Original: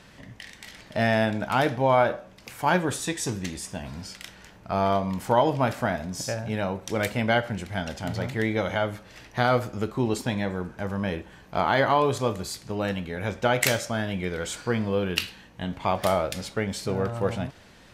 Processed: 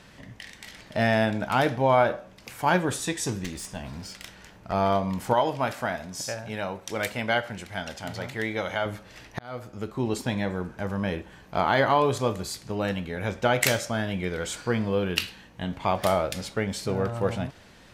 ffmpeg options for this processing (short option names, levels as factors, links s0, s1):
-filter_complex "[0:a]asettb=1/sr,asplit=3[s0][s1][s2];[s0]atrim=end=3.444[s3];[s1]atrim=start=3.44:end=4.73,asetpts=PTS-STARTPTS,afade=t=in:d=0.004:c=qsin,afade=t=out:st=1.286:d=0.004:c=qsin,aeval=exprs='clip(val(0),-1,0.0158)':c=same[s4];[s2]atrim=start=4.726[s5];[s3][s4]acrossfade=d=0.004:c1=hsin:c2=qsin[s6];[s6][s5]acrossfade=d=0.004:c1=qsin:c2=hsin,asettb=1/sr,asplit=3[s7][s8][s9];[s7]atrim=end=5.334[s10];[s8]atrim=start=5.33:end=8.86,asetpts=PTS-STARTPTS,afade=t=in:d=0.004:c=qsin,afade=t=out:st=3.526:d=0.004:c=qsin,lowshelf=f=440:g=-8[s11];[s9]atrim=start=8.856[s12];[s10][s11]acrossfade=d=0.004:c1=hsin:c2=qsin[s13];[s13][s12]acrossfade=d=0.004:c1=qsin:c2=hsin,asplit=2[s14][s15];[s14]atrim=end=9.39,asetpts=PTS-STARTPTS,afade=t=out:st=9.386:d=0.004:c=hsin[s16];[s15]atrim=start=9.39,asetpts=PTS-STARTPTS,afade=t=in:d=1.17:c=qsin[s17];[s16][s17]concat=n=2:v=0:a=1"